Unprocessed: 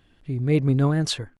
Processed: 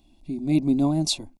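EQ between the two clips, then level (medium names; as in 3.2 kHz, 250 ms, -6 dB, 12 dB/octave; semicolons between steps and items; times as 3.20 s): Butterworth band-stop 3.1 kHz, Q 7.6; peaking EQ 1.3 kHz -15 dB 0.64 oct; static phaser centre 460 Hz, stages 6; +4.5 dB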